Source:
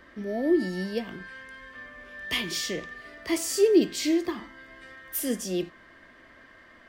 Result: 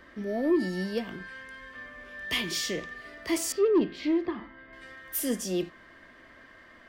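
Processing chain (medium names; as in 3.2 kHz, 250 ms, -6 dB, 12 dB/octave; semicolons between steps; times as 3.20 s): 3.52–4.73 s: distance through air 350 m; saturation -16.5 dBFS, distortion -16 dB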